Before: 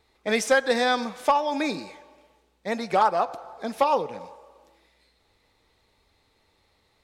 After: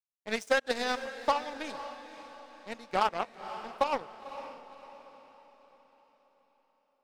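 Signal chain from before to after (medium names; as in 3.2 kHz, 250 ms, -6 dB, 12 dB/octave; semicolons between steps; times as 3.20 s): power-law waveshaper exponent 2; echo that smears into a reverb 523 ms, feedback 45%, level -12 dB; trim -3.5 dB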